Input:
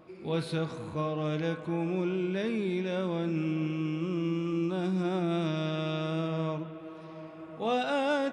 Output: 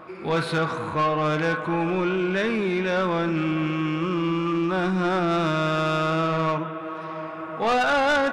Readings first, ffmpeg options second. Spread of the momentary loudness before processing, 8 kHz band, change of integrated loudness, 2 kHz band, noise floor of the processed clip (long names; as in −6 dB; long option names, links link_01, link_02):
6 LU, can't be measured, +7.5 dB, +13.5 dB, −34 dBFS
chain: -af "equalizer=frequency=1300:width_type=o:width=1.8:gain=13.5,asoftclip=type=tanh:threshold=-23dB,volume=6dB"